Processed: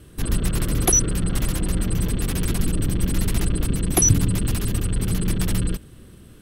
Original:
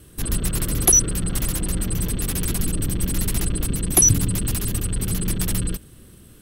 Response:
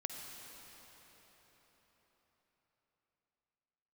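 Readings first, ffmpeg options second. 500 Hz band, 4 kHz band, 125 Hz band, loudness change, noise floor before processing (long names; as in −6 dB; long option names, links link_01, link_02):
+2.0 dB, −0.5 dB, +2.0 dB, −1.5 dB, −47 dBFS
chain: -af "highshelf=frequency=6200:gain=-10,volume=2dB"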